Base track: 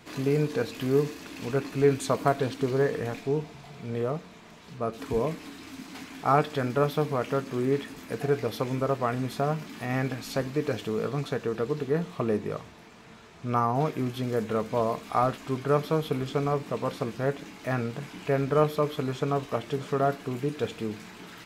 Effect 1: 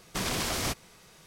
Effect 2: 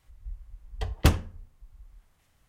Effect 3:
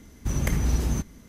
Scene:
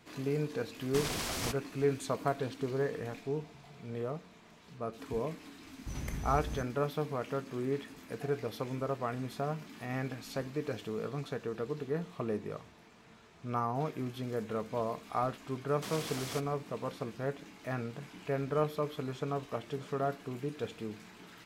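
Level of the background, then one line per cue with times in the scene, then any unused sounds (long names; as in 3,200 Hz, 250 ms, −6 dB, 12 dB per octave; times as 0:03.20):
base track −8 dB
0:00.79: mix in 1 −5.5 dB
0:05.61: mix in 3 −14 dB
0:15.67: mix in 1 −10.5 dB + high-pass filter 130 Hz
not used: 2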